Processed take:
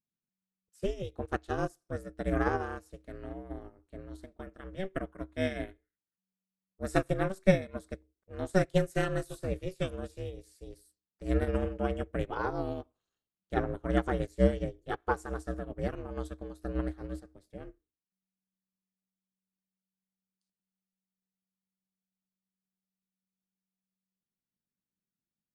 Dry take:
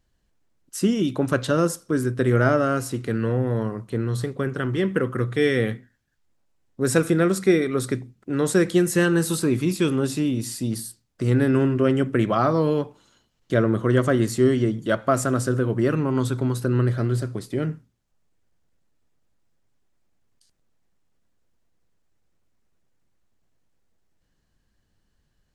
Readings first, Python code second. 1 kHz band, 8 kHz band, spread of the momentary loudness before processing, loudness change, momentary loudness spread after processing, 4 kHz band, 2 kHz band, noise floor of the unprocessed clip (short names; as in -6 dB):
-8.0 dB, -21.0 dB, 8 LU, -11.0 dB, 19 LU, -13.0 dB, -10.5 dB, -71 dBFS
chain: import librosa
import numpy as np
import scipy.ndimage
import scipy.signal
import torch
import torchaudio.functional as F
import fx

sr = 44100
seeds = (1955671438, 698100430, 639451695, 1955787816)

y = x * np.sin(2.0 * np.pi * 190.0 * np.arange(len(x)) / sr)
y = fx.upward_expand(y, sr, threshold_db=-33.0, expansion=2.5)